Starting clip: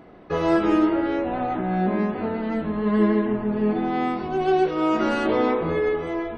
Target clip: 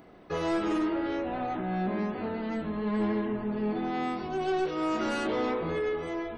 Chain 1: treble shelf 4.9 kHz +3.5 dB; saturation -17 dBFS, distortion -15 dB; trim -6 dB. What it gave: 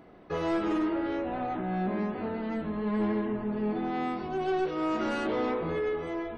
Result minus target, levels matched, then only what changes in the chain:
8 kHz band -6.0 dB
change: treble shelf 4.9 kHz +13.5 dB

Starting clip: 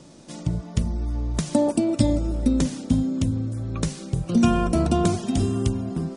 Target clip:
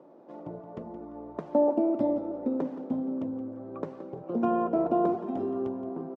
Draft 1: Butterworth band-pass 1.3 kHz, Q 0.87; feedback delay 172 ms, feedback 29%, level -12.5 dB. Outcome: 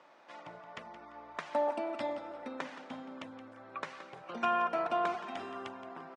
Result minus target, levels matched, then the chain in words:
1 kHz band +6.5 dB
Butterworth band-pass 590 Hz, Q 0.87; feedback delay 172 ms, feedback 29%, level -12.5 dB

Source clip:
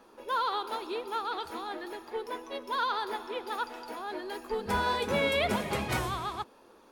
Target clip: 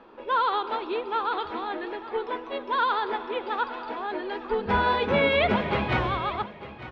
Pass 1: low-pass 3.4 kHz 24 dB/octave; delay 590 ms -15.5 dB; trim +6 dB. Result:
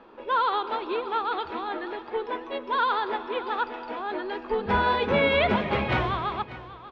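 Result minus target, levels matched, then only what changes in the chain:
echo 309 ms early
change: delay 899 ms -15.5 dB

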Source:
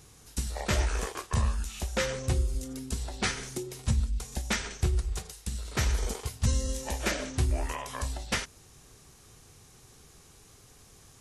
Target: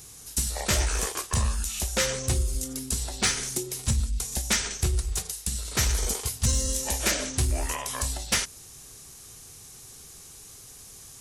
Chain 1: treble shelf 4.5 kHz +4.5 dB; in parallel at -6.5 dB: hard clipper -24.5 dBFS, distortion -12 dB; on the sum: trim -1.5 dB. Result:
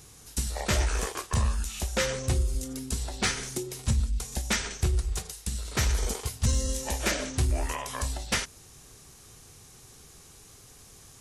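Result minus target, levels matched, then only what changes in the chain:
8 kHz band -3.5 dB
change: treble shelf 4.5 kHz +13.5 dB

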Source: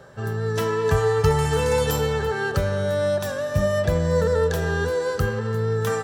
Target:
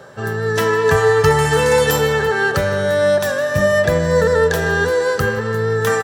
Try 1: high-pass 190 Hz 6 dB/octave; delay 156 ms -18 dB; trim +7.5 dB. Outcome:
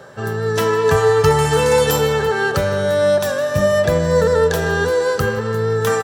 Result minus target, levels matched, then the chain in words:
2 kHz band -3.5 dB
high-pass 190 Hz 6 dB/octave; dynamic bell 1.8 kHz, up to +6 dB, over -46 dBFS, Q 4.2; delay 156 ms -18 dB; trim +7.5 dB

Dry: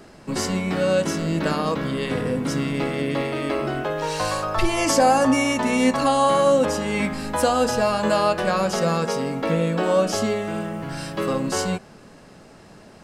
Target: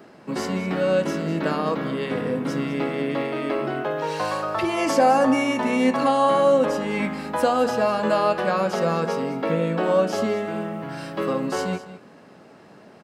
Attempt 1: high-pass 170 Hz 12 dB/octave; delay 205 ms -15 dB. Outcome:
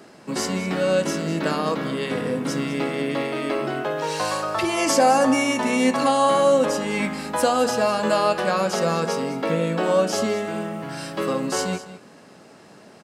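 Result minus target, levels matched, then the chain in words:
8 kHz band +9.0 dB
high-pass 170 Hz 12 dB/octave; peaking EQ 8.2 kHz -10.5 dB 1.9 oct; delay 205 ms -15 dB

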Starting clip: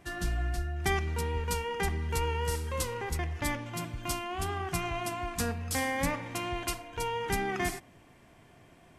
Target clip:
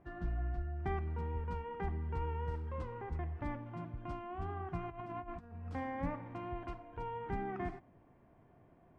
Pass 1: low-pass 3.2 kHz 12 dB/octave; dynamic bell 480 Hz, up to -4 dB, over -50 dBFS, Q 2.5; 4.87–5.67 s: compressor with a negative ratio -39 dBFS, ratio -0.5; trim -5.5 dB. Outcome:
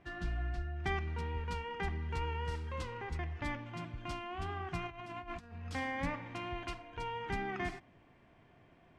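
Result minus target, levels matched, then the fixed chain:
4 kHz band +14.0 dB
low-pass 1.1 kHz 12 dB/octave; dynamic bell 480 Hz, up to -4 dB, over -50 dBFS, Q 2.5; 4.87–5.67 s: compressor with a negative ratio -39 dBFS, ratio -0.5; trim -5.5 dB

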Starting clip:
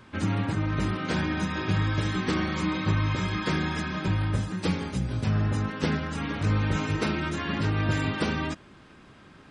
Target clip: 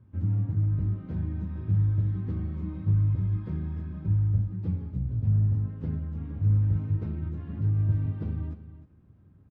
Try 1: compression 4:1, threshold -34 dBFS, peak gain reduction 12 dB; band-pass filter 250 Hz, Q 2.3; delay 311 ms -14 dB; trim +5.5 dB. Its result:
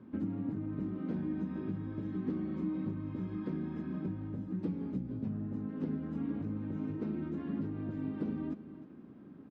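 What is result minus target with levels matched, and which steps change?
compression: peak gain reduction +12 dB; 250 Hz band +11.5 dB
change: band-pass filter 88 Hz, Q 2.3; remove: compression 4:1, threshold -34 dBFS, peak gain reduction 12 dB

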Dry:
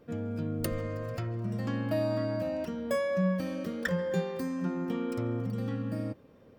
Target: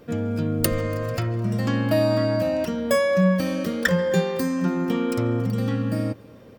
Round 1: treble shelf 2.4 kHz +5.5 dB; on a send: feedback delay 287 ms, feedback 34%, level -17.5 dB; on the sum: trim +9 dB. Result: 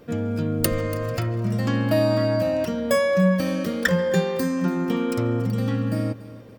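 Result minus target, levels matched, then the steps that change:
echo-to-direct +9 dB
change: feedback delay 287 ms, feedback 34%, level -26.5 dB

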